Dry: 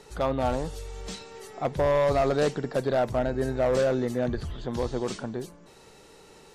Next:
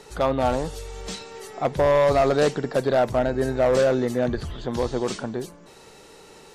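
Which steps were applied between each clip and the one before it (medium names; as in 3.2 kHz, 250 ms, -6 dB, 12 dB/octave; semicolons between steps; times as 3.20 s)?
bass shelf 180 Hz -4 dB; trim +5 dB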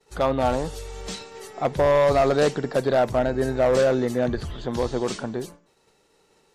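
expander -37 dBFS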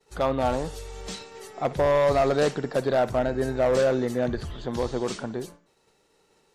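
band-passed feedback delay 60 ms, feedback 42%, band-pass 1.6 kHz, level -16 dB; trim -2.5 dB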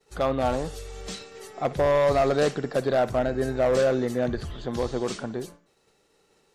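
band-stop 920 Hz, Q 14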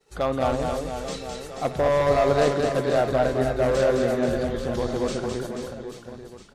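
reverse bouncing-ball echo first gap 210 ms, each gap 1.3×, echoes 5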